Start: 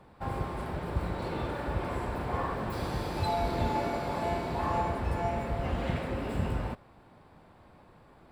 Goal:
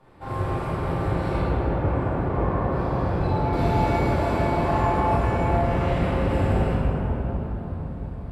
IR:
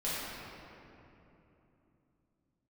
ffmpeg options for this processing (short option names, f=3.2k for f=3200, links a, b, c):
-filter_complex "[0:a]asettb=1/sr,asplit=3[a][b][c];[a]atrim=end=1.384[d];[b]atrim=start=1.38:end=3.53,asetpts=PTS-STARTPTS,afade=t=in:d=0.004:c=qsin,afade=t=out:st=2.146:d=0.004:c=qsin,lowpass=f=1.2k:p=1[e];[c]atrim=start=3.526[f];[d][e]acrossfade=d=0.004:c1=hsin:c2=qsin[g];[g][f]acrossfade=d=0.004:c1=qsin:c2=hsin[h];[1:a]atrim=start_sample=2205,asetrate=26460,aresample=44100[i];[h][i]afir=irnorm=-1:irlink=0,volume=-2.5dB"